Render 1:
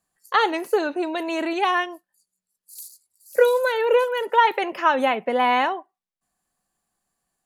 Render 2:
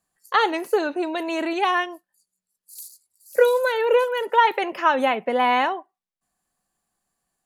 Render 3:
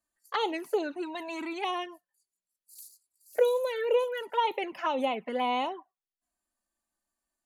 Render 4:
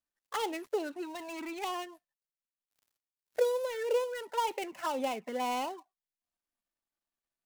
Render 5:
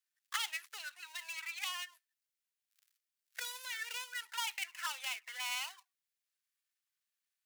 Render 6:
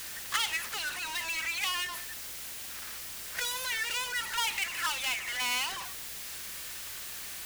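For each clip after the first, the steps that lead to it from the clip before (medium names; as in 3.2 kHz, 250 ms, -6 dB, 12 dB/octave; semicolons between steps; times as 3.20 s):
no audible change
touch-sensitive flanger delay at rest 3.3 ms, full sweep at -16.5 dBFS; trim -6 dB
dead-time distortion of 0.094 ms; trim -4 dB
high-pass 1.5 kHz 24 dB/octave; trim +4 dB
jump at every zero crossing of -37.5 dBFS; hum 60 Hz, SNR 28 dB; trim +4.5 dB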